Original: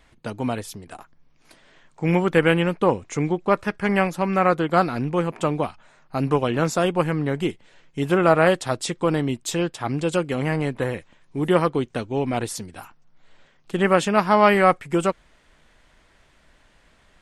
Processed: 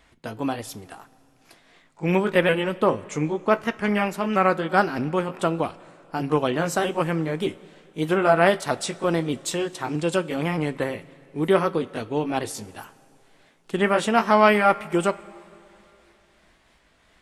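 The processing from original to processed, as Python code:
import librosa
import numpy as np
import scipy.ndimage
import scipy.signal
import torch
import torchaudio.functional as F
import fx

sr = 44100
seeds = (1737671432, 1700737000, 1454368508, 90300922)

y = fx.pitch_ramps(x, sr, semitones=2.0, every_ms=622)
y = fx.low_shelf(y, sr, hz=70.0, db=-8.5)
y = fx.rev_double_slope(y, sr, seeds[0], early_s=0.21, late_s=2.9, knee_db=-18, drr_db=13.0)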